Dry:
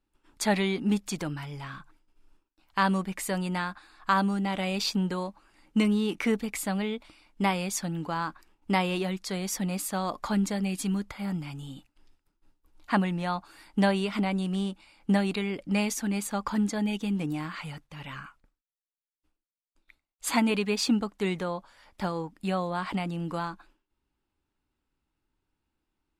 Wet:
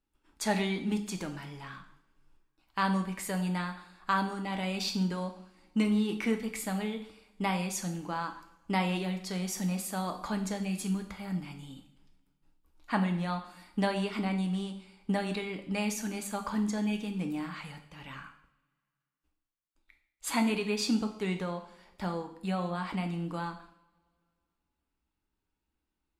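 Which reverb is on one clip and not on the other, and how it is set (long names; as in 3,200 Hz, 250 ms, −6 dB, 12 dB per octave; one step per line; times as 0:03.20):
coupled-rooms reverb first 0.61 s, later 2.2 s, from −24 dB, DRR 5 dB
level −5 dB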